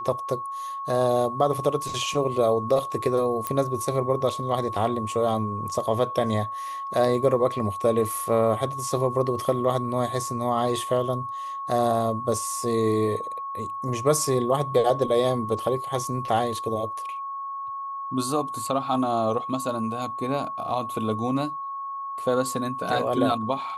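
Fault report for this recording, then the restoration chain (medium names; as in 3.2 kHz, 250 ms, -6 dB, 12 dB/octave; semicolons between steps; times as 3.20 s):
whine 1.1 kHz -30 dBFS
3.47 s: pop -12 dBFS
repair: de-click; band-stop 1.1 kHz, Q 30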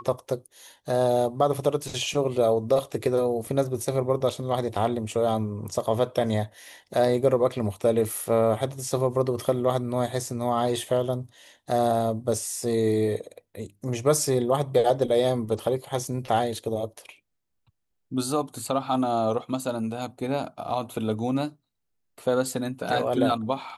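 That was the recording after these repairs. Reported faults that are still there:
nothing left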